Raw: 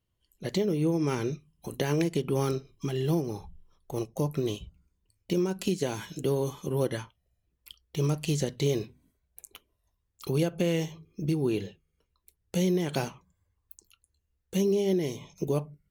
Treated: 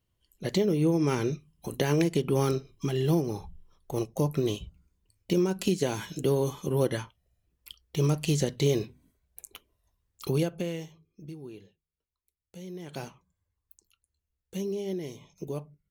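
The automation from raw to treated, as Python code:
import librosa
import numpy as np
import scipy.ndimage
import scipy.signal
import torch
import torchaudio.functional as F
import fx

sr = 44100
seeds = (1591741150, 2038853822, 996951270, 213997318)

y = fx.gain(x, sr, db=fx.line((10.29, 2.0), (10.83, -9.5), (11.62, -17.5), (12.61, -17.5), (13.04, -7.0)))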